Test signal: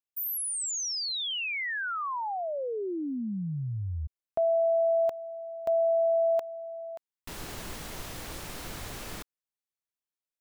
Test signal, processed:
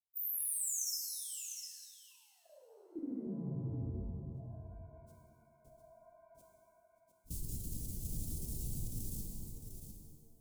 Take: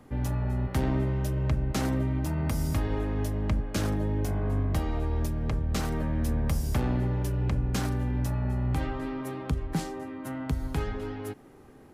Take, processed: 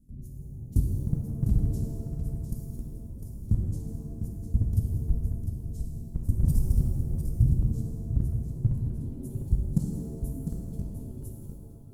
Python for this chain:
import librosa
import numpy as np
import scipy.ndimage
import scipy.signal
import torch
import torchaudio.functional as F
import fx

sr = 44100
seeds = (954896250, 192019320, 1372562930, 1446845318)

p1 = fx.phase_scramble(x, sr, seeds[0], window_ms=50)
p2 = scipy.signal.sosfilt(scipy.signal.cheby1(2, 1.0, [170.0, 8700.0], 'bandstop', fs=sr, output='sos'), p1)
p3 = fx.low_shelf(p2, sr, hz=140.0, db=6.5)
p4 = fx.level_steps(p3, sr, step_db=21)
p5 = fx.dereverb_blind(p4, sr, rt60_s=0.75)
p6 = p5 + fx.echo_single(p5, sr, ms=702, db=-8.0, dry=0)
p7 = fx.rev_shimmer(p6, sr, seeds[1], rt60_s=1.6, semitones=7, shimmer_db=-8, drr_db=1.0)
y = F.gain(torch.from_numpy(p7), 2.0).numpy()